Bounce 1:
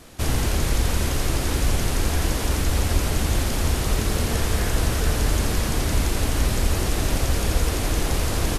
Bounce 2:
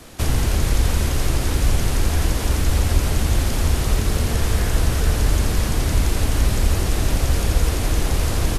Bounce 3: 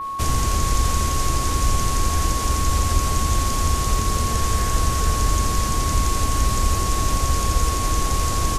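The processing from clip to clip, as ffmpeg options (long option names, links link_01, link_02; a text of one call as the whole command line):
ffmpeg -i in.wav -filter_complex "[0:a]acrossover=split=150[link_01][link_02];[link_02]acompressor=threshold=-30dB:ratio=2.5[link_03];[link_01][link_03]amix=inputs=2:normalize=0,volume=4dB" out.wav
ffmpeg -i in.wav -af "adynamicequalizer=threshold=0.00398:dfrequency=6800:dqfactor=1.2:tfrequency=6800:tqfactor=1.2:attack=5:release=100:ratio=0.375:range=4:mode=boostabove:tftype=bell,aeval=exprs='val(0)+0.0708*sin(2*PI*1100*n/s)':channel_layout=same,volume=-2.5dB" out.wav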